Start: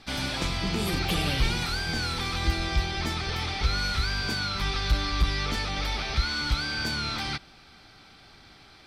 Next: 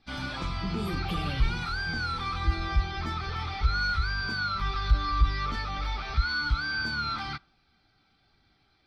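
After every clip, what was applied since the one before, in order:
dynamic equaliser 1,200 Hz, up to +7 dB, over −49 dBFS, Q 1.9
in parallel at +2 dB: brickwall limiter −23.5 dBFS, peak gain reduction 10.5 dB
on the sum: every bin expanded away from the loudest bin 1.5 to 1
level −2 dB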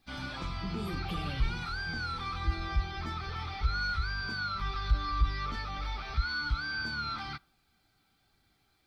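bit-depth reduction 12 bits, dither none
level −4.5 dB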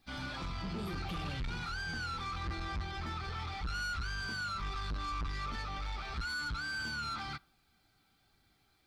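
soft clipping −33.5 dBFS, distortion −6 dB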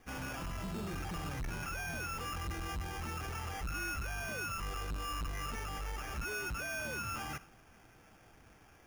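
reversed playback
downward compressor, threshold −46 dBFS, peak gain reduction 10.5 dB
reversed playback
brickwall limiter −46 dBFS, peak gain reduction 7.5 dB
decimation without filtering 11×
level +11 dB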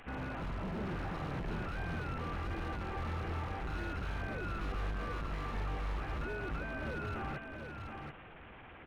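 linear delta modulator 16 kbit/s, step −51 dBFS
wave folding −38 dBFS
on a send: single-tap delay 730 ms −5.5 dB
on the sum: level +3.5 dB

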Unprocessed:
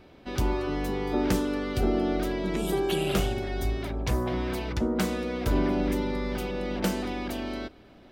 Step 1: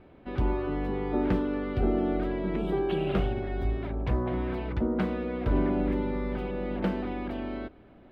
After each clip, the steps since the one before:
high-frequency loss of the air 470 metres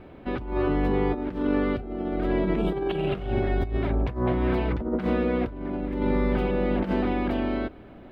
compressor whose output falls as the input rises −30 dBFS, ratio −0.5
level +5.5 dB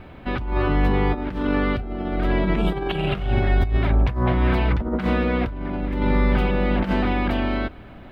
parametric band 380 Hz −9 dB 1.8 octaves
level +8.5 dB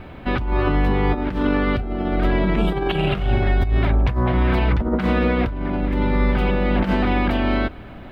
boost into a limiter +13 dB
level −9 dB

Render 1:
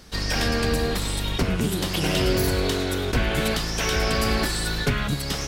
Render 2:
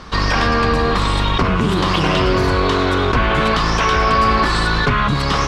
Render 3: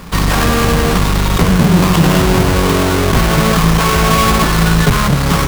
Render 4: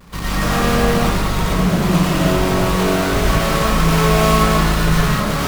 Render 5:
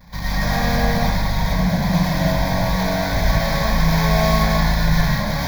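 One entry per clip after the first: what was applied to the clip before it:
low-pass filter 4,100 Hz 12 dB per octave; parametric band 1,100 Hz +13.5 dB 0.53 octaves; in parallel at −1 dB: compressor whose output falls as the input rises −27 dBFS, ratio −1; on the sum: level +3 dB
each half-wave held at its own peak; parametric band 170 Hz +11 dB 0.24 octaves; level −1.5 dB
automatic gain control; pitch vibrato 0.42 Hz 25 cents; convolution reverb RT60 0.80 s, pre-delay 70 ms, DRR −6.5 dB; level −12.5 dB
phaser with its sweep stopped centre 1,900 Hz, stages 8

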